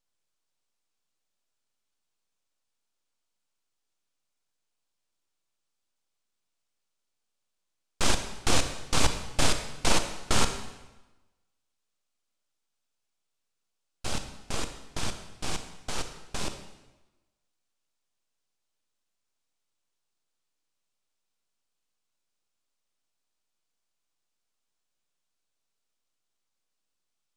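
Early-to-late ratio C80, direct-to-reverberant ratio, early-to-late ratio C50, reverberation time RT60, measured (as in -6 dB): 10.5 dB, 7.5 dB, 9.0 dB, 1.1 s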